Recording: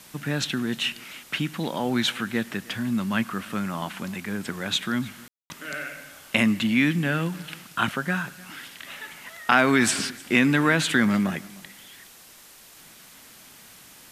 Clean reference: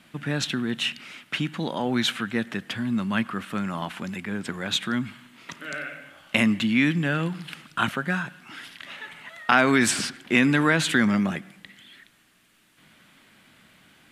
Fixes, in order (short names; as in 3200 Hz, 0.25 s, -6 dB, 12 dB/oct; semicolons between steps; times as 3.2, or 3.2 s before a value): room tone fill 5.28–5.5; denoiser 7 dB, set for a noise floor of -49 dBFS; inverse comb 0.305 s -22.5 dB